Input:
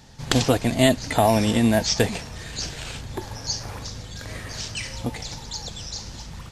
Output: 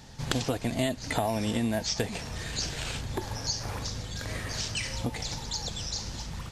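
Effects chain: compressor 4:1, threshold -27 dBFS, peak gain reduction 12.5 dB

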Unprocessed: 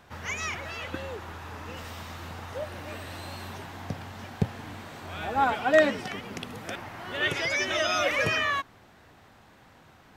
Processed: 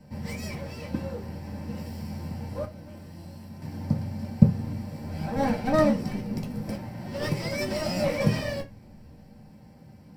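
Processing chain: minimum comb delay 0.4 ms; 2.65–3.62 resonator 170 Hz, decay 0.33 s, harmonics all, mix 70%; reverb RT60 0.20 s, pre-delay 3 ms, DRR -4.5 dB; gain -11 dB

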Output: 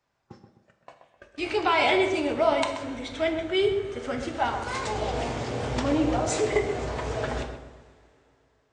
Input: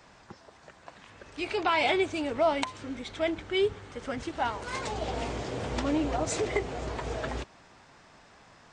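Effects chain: spectral noise reduction 6 dB; gate -48 dBFS, range -18 dB; on a send: darkening echo 0.129 s, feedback 42%, low-pass 1500 Hz, level -7 dB; on the sum: two-slope reverb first 0.55 s, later 3.2 s, from -18 dB, DRR 5 dB; gain +2 dB

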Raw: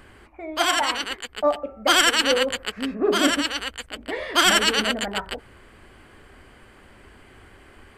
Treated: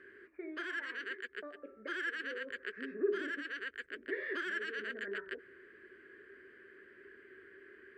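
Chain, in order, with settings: in parallel at +0.5 dB: limiter -17.5 dBFS, peak gain reduction 9.5 dB; on the sum: compressor 6:1, threshold -21 dBFS, peak gain reduction 10.5 dB; double band-pass 810 Hz, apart 2.1 oct; gain -5 dB

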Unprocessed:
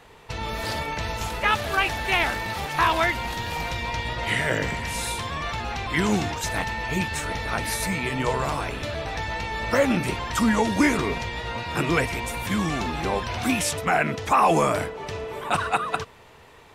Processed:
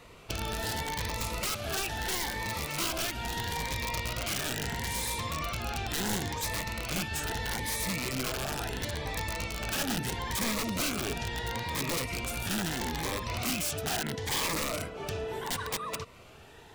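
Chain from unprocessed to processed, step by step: compressor 2.5:1, threshold -30 dBFS, peak gain reduction 10 dB; wrapped overs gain 24 dB; cascading phaser rising 0.75 Hz

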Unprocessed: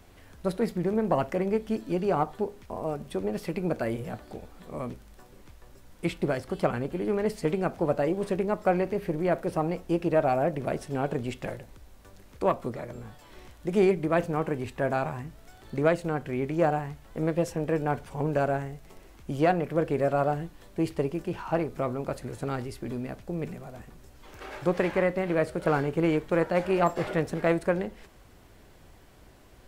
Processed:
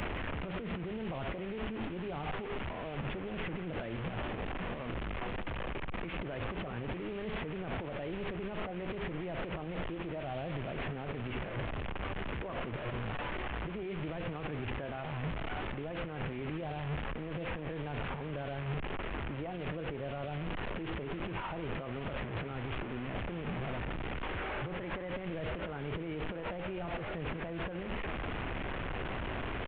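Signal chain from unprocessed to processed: delta modulation 16 kbps, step -29 dBFS; limiter -33 dBFS, peak gain reduction 21.5 dB; echo 0.17 s -16.5 dB; three-band squash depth 100%; gain -1 dB

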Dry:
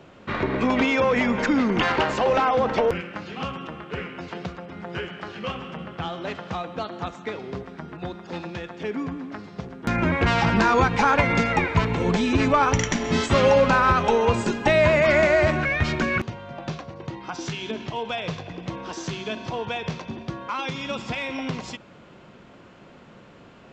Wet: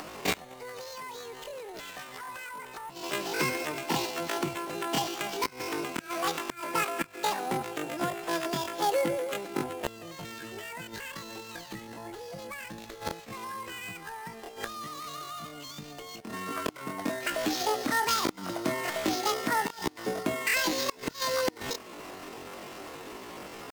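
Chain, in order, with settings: flipped gate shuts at -17 dBFS, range -25 dB; sample-rate reducer 5400 Hz, jitter 20%; upward compressor, threshold -38 dBFS; pitch shift +11.5 st; gain +2.5 dB

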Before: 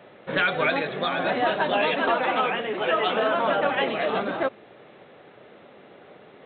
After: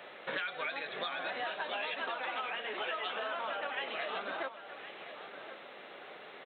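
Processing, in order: HPF 1400 Hz 6 dB/oct; compressor 6:1, threshold -42 dBFS, peak gain reduction 19 dB; echo 1.067 s -12 dB; gain +6 dB

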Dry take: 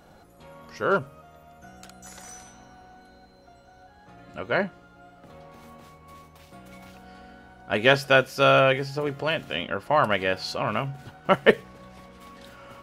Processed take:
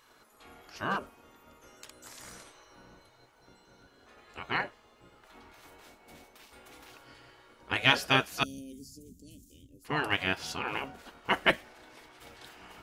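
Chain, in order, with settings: 8.43–9.85 elliptic band-stop 200–6800 Hz, stop band 80 dB; spectral gate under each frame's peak -10 dB weak

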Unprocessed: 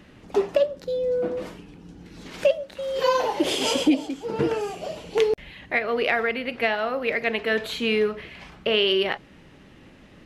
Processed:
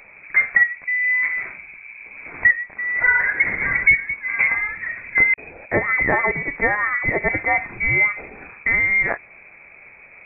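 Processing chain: inverted band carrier 2500 Hz; gain +4.5 dB

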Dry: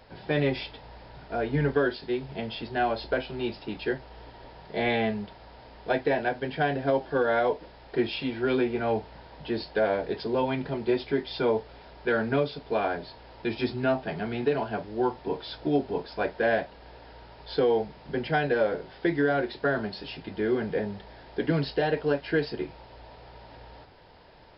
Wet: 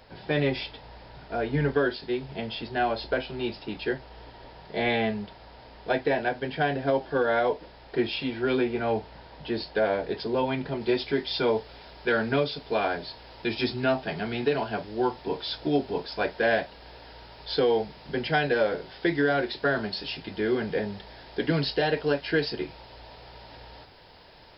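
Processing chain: high shelf 3100 Hz +4 dB, from 10.81 s +11.5 dB

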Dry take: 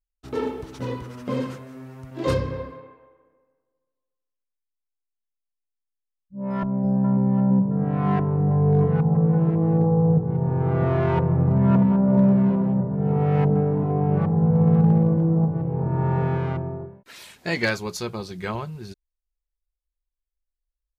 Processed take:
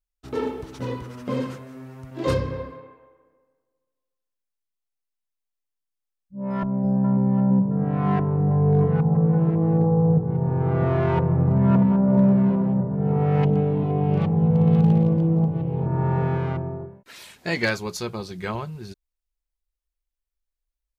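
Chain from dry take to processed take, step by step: 13.43–15.86 resonant high shelf 2200 Hz +10.5 dB, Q 1.5

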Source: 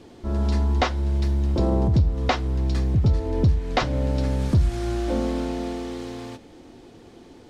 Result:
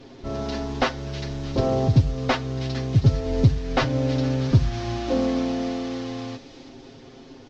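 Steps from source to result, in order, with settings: CVSD 32 kbps; comb 7.5 ms, depth 84%; thin delay 0.319 s, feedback 53%, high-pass 3300 Hz, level -8 dB

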